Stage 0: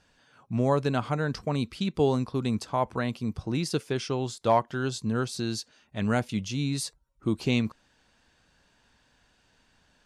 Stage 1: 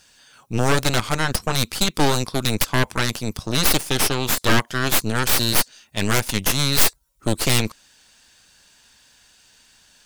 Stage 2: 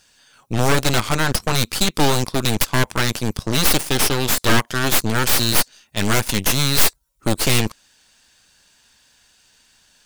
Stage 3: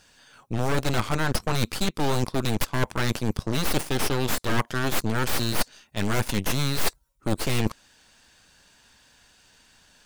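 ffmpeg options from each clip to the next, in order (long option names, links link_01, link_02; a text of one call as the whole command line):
ffmpeg -i in.wav -af "crystalizer=i=7.5:c=0,aeval=exprs='0.841*(cos(1*acos(clip(val(0)/0.841,-1,1)))-cos(1*PI/2))+0.211*(cos(7*acos(clip(val(0)/0.841,-1,1)))-cos(7*PI/2))+0.266*(cos(8*acos(clip(val(0)/0.841,-1,1)))-cos(8*PI/2))':channel_layout=same,volume=12dB,asoftclip=hard,volume=-12dB,volume=3.5dB" out.wav
ffmpeg -i in.wav -af "aeval=exprs='0.398*(cos(1*acos(clip(val(0)/0.398,-1,1)))-cos(1*PI/2))+0.1*(cos(8*acos(clip(val(0)/0.398,-1,1)))-cos(8*PI/2))':channel_layout=same,volume=-2dB" out.wav
ffmpeg -i in.wav -af "highshelf=frequency=2400:gain=-7.5,areverse,acompressor=threshold=-23dB:ratio=6,areverse,volume=3.5dB" out.wav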